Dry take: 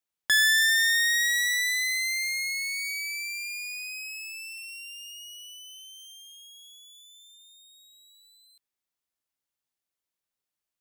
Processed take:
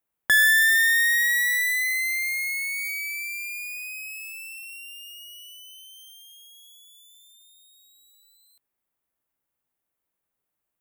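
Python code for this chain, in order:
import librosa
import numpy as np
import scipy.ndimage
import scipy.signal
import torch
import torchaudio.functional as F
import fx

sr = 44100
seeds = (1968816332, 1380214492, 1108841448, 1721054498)

y = fx.peak_eq(x, sr, hz=5000.0, db=-15.0, octaves=1.7)
y = F.gain(torch.from_numpy(y), 8.5).numpy()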